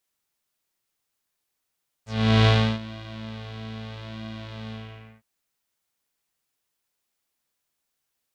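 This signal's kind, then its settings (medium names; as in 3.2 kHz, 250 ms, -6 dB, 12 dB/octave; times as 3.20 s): synth patch with pulse-width modulation A2, oscillator 2 square, interval +12 st, detune 16 cents, oscillator 2 level -6.5 dB, filter lowpass, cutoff 2.1 kHz, Q 2.7, filter envelope 2 oct, filter decay 0.08 s, filter sustain 40%, attack 398 ms, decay 0.33 s, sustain -21.5 dB, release 0.51 s, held 2.65 s, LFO 0.79 Hz, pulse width 31%, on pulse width 6%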